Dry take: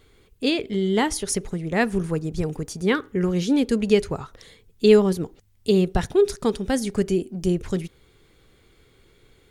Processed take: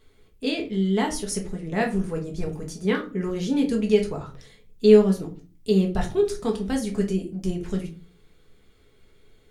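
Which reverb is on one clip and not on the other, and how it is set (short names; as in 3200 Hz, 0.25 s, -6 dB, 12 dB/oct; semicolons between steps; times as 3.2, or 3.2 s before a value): shoebox room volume 180 m³, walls furnished, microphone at 1.5 m; gain -6.5 dB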